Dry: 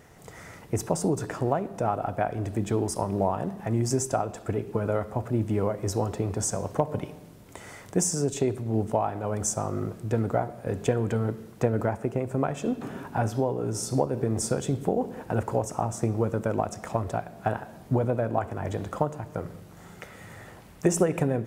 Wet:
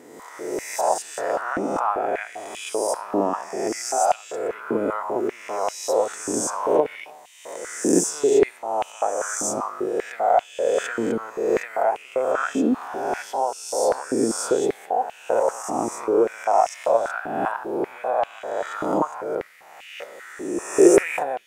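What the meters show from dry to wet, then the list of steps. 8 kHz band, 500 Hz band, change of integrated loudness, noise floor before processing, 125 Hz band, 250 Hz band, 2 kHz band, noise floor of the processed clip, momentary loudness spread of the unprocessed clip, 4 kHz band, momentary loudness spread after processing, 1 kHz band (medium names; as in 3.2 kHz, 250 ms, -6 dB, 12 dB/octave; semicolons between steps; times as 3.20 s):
+4.5 dB, +7.0 dB, +5.0 dB, -48 dBFS, -16.0 dB, +2.5 dB, +9.0 dB, -46 dBFS, 11 LU, +6.0 dB, 10 LU, +8.0 dB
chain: reverse spectral sustain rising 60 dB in 1.31 s; step-sequenced high-pass 5.1 Hz 280–2800 Hz; trim -1.5 dB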